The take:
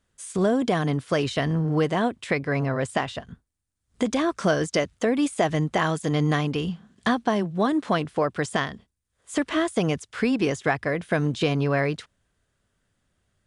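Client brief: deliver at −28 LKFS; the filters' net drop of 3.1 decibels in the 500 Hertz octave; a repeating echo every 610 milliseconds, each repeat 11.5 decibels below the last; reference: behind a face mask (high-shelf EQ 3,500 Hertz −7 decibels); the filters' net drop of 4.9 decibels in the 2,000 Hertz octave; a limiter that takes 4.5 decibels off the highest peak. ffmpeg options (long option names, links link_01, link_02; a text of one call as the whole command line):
ffmpeg -i in.wav -af "equalizer=frequency=500:width_type=o:gain=-3.5,equalizer=frequency=2000:width_type=o:gain=-4,alimiter=limit=-16.5dB:level=0:latency=1,highshelf=frequency=3500:gain=-7,aecho=1:1:610|1220|1830:0.266|0.0718|0.0194" out.wav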